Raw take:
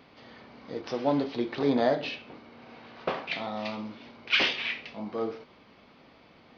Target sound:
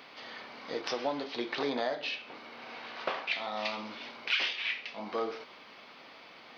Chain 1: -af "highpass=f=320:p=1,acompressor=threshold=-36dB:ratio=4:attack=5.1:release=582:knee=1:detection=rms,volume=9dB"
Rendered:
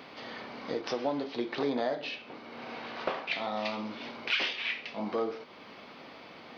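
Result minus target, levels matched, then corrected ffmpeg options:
250 Hz band +4.0 dB
-af "highpass=f=1.1k:p=1,acompressor=threshold=-36dB:ratio=4:attack=5.1:release=582:knee=1:detection=rms,volume=9dB"

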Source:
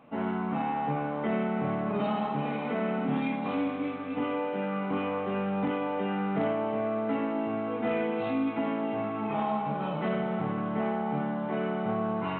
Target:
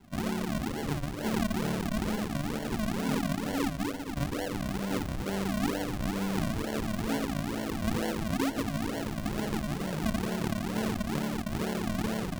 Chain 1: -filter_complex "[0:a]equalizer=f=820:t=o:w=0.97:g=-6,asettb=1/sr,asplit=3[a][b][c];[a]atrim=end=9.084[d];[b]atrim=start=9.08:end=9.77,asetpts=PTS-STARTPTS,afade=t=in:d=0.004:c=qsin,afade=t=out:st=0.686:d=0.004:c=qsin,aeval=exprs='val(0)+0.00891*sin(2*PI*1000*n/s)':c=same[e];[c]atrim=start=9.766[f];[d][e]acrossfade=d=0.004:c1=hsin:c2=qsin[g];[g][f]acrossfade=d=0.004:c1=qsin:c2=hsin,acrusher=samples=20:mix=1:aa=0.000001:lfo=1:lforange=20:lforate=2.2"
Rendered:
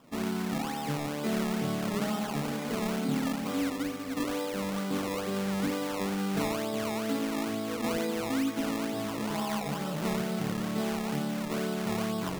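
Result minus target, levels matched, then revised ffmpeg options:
decimation with a swept rate: distortion -14 dB
-filter_complex "[0:a]equalizer=f=820:t=o:w=0.97:g=-6,asettb=1/sr,asplit=3[a][b][c];[a]atrim=end=9.084[d];[b]atrim=start=9.08:end=9.77,asetpts=PTS-STARTPTS,afade=t=in:d=0.004:c=qsin,afade=t=out:st=0.686:d=0.004:c=qsin,aeval=exprs='val(0)+0.00891*sin(2*PI*1000*n/s)':c=same[e];[c]atrim=start=9.766[f];[d][e]acrossfade=d=0.004:c1=hsin:c2=qsin[g];[g][f]acrossfade=d=0.004:c1=qsin:c2=hsin,acrusher=samples=70:mix=1:aa=0.000001:lfo=1:lforange=70:lforate=2.2"

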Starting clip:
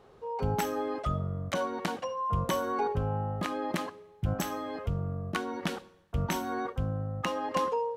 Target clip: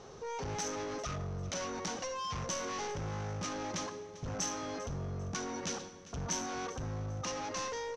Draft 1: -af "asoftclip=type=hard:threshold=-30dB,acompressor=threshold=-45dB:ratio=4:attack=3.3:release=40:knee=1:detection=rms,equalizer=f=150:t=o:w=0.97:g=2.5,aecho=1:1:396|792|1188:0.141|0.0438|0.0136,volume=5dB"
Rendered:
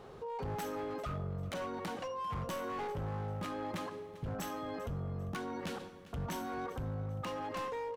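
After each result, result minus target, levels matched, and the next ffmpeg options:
8000 Hz band -13.5 dB; hard clip: distortion -4 dB
-af "asoftclip=type=hard:threshold=-30dB,acompressor=threshold=-45dB:ratio=4:attack=3.3:release=40:knee=1:detection=rms,lowpass=f=6k:t=q:w=9.5,equalizer=f=150:t=o:w=0.97:g=2.5,aecho=1:1:396|792|1188:0.141|0.0438|0.0136,volume=5dB"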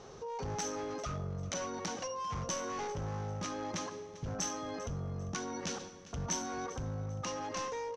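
hard clip: distortion -4 dB
-af "asoftclip=type=hard:threshold=-36dB,acompressor=threshold=-45dB:ratio=4:attack=3.3:release=40:knee=1:detection=rms,lowpass=f=6k:t=q:w=9.5,equalizer=f=150:t=o:w=0.97:g=2.5,aecho=1:1:396|792|1188:0.141|0.0438|0.0136,volume=5dB"

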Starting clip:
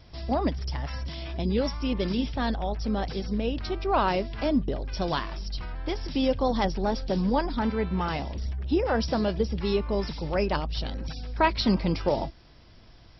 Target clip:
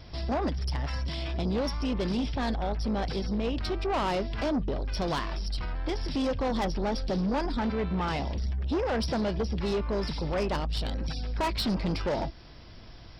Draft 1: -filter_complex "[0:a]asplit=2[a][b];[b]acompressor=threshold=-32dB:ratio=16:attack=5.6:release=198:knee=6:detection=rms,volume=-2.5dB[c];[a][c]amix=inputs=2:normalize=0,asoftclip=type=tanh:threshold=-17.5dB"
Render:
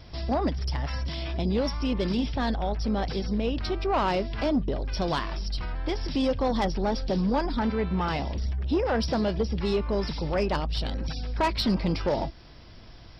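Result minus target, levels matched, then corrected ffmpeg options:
soft clip: distortion -7 dB
-filter_complex "[0:a]asplit=2[a][b];[b]acompressor=threshold=-32dB:ratio=16:attack=5.6:release=198:knee=6:detection=rms,volume=-2.5dB[c];[a][c]amix=inputs=2:normalize=0,asoftclip=type=tanh:threshold=-24dB"

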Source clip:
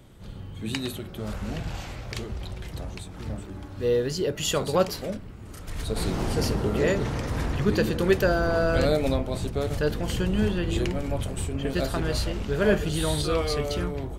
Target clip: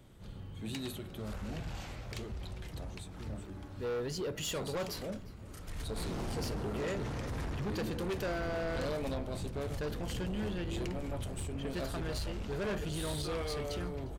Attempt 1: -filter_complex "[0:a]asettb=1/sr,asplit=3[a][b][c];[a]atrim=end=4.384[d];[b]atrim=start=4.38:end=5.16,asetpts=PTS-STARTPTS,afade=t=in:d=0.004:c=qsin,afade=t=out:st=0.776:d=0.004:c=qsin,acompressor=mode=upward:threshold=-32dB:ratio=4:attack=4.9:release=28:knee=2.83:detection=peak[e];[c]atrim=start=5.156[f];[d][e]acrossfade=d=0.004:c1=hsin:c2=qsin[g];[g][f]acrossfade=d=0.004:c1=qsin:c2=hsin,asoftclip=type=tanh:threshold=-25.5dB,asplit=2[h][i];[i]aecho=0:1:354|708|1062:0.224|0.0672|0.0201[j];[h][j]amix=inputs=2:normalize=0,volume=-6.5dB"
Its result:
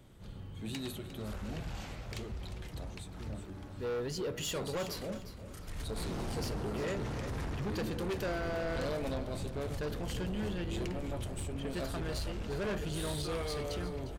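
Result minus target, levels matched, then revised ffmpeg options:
echo-to-direct +9.5 dB
-filter_complex "[0:a]asettb=1/sr,asplit=3[a][b][c];[a]atrim=end=4.384[d];[b]atrim=start=4.38:end=5.16,asetpts=PTS-STARTPTS,afade=t=in:d=0.004:c=qsin,afade=t=out:st=0.776:d=0.004:c=qsin,acompressor=mode=upward:threshold=-32dB:ratio=4:attack=4.9:release=28:knee=2.83:detection=peak[e];[c]atrim=start=5.156[f];[d][e]acrossfade=d=0.004:c1=hsin:c2=qsin[g];[g][f]acrossfade=d=0.004:c1=qsin:c2=hsin,asoftclip=type=tanh:threshold=-25.5dB,asplit=2[h][i];[i]aecho=0:1:354|708:0.075|0.0225[j];[h][j]amix=inputs=2:normalize=0,volume=-6.5dB"

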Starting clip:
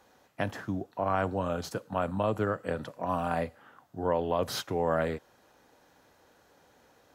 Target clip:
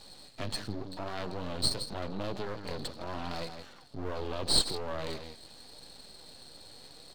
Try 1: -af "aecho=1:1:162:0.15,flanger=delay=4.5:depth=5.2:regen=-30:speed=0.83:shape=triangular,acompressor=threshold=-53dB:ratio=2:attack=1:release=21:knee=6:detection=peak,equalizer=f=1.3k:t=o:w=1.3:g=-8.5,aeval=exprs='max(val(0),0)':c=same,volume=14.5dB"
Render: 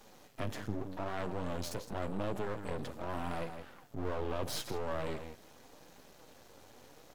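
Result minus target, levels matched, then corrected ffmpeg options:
4000 Hz band -9.5 dB
-af "aecho=1:1:162:0.15,flanger=delay=4.5:depth=5.2:regen=-30:speed=0.83:shape=triangular,acompressor=threshold=-53dB:ratio=2:attack=1:release=21:knee=6:detection=peak,lowpass=f=4.3k:t=q:w=16,equalizer=f=1.3k:t=o:w=1.3:g=-8.5,aeval=exprs='max(val(0),0)':c=same,volume=14.5dB"

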